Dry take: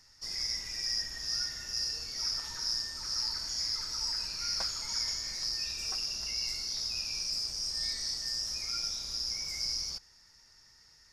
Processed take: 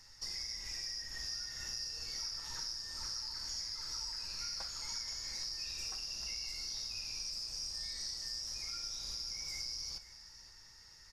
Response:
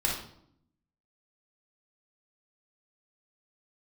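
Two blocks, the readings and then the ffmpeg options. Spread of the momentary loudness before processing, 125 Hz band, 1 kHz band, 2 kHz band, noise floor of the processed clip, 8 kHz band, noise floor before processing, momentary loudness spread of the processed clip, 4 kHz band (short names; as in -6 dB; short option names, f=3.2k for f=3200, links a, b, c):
2 LU, -4.5 dB, -6.0 dB, -5.5 dB, -58 dBFS, -5.5 dB, -61 dBFS, 3 LU, -7.0 dB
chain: -filter_complex "[0:a]acompressor=threshold=-41dB:ratio=6,aecho=1:1:519:0.158,asplit=2[a][b];[1:a]atrim=start_sample=2205,atrim=end_sample=3087[c];[b][c]afir=irnorm=-1:irlink=0,volume=-14dB[d];[a][d]amix=inputs=2:normalize=0"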